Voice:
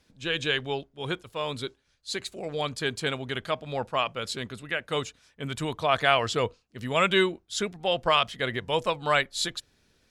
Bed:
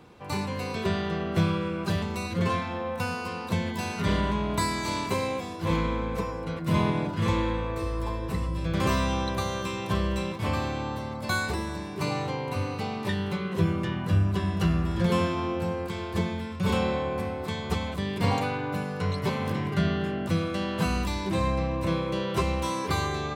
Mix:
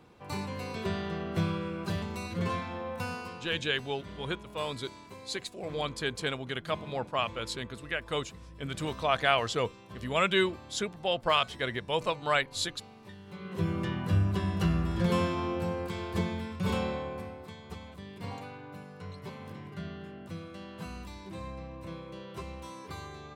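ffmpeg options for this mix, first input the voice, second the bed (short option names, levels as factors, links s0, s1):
-filter_complex "[0:a]adelay=3200,volume=0.668[s0];[1:a]volume=3.76,afade=t=out:st=3.15:d=0.45:silence=0.188365,afade=t=in:st=13.26:d=0.57:silence=0.141254,afade=t=out:st=16.44:d=1.11:silence=0.251189[s1];[s0][s1]amix=inputs=2:normalize=0"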